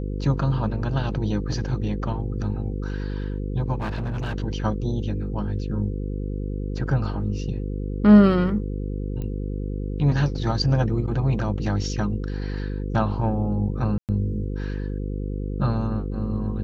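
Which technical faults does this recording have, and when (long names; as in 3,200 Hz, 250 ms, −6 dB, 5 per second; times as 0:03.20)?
mains buzz 50 Hz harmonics 10 −28 dBFS
0:03.78–0:04.36: clipping −23.5 dBFS
0:09.22: click −21 dBFS
0:13.98–0:14.09: drop-out 108 ms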